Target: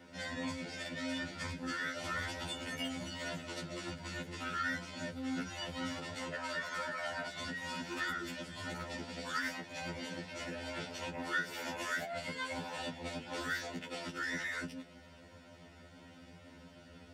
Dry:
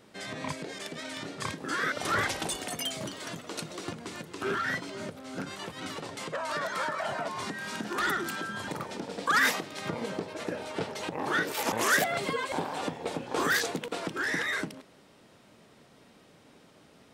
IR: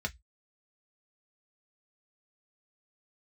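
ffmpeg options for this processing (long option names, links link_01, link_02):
-filter_complex "[0:a]acrossover=split=2000|4500[link_01][link_02][link_03];[link_01]acompressor=threshold=-42dB:ratio=4[link_04];[link_02]acompressor=threshold=-48dB:ratio=4[link_05];[link_03]acompressor=threshold=-49dB:ratio=4[link_06];[link_04][link_05][link_06]amix=inputs=3:normalize=0[link_07];[1:a]atrim=start_sample=2205,afade=type=out:start_time=0.19:duration=0.01,atrim=end_sample=8820[link_08];[link_07][link_08]afir=irnorm=-1:irlink=0,afftfilt=real='re*2*eq(mod(b,4),0)':imag='im*2*eq(mod(b,4),0)':win_size=2048:overlap=0.75"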